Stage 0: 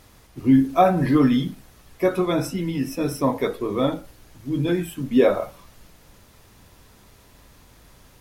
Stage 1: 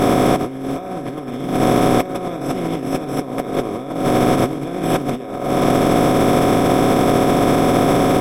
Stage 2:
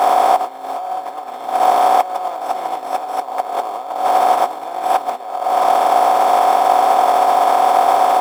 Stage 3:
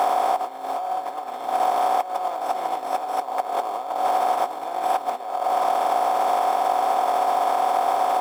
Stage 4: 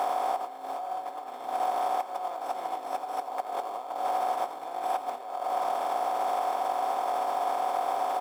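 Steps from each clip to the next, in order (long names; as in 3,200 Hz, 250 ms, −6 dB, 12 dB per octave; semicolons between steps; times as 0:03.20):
compressor on every frequency bin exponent 0.2; low-shelf EQ 120 Hz +6.5 dB; compressor whose output falls as the input rises −16 dBFS, ratio −0.5; level −1 dB
in parallel at −8 dB: sample-rate reduction 3,900 Hz, jitter 0%; on the sum: high-pass with resonance 820 Hz, resonance Q 6.7; level −4 dB
downward compressor 3 to 1, threshold −16 dBFS, peak gain reduction 6.5 dB; level −3 dB
single-tap delay 86 ms −13 dB; level −8 dB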